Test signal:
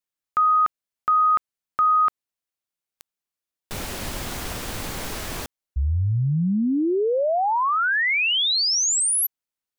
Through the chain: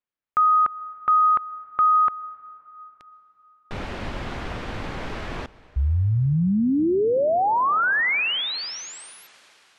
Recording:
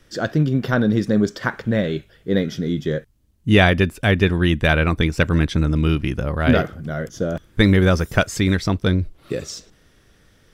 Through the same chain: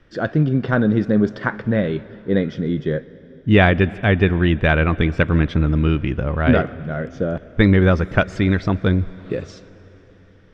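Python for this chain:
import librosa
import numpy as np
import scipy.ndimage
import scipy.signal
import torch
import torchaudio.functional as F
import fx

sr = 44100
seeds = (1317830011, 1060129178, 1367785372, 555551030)

y = scipy.signal.sosfilt(scipy.signal.butter(2, 2600.0, 'lowpass', fs=sr, output='sos'), x)
y = fx.rev_plate(y, sr, seeds[0], rt60_s=4.0, hf_ratio=0.9, predelay_ms=105, drr_db=19.0)
y = F.gain(torch.from_numpy(y), 1.0).numpy()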